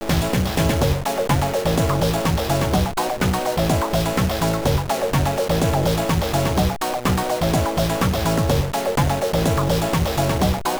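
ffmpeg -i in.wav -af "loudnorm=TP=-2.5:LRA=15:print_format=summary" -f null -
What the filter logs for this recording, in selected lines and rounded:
Input Integrated:    -20.4 LUFS
Input True Peak:      -6.3 dBTP
Input LRA:             0.3 LU
Input Threshold:     -30.4 LUFS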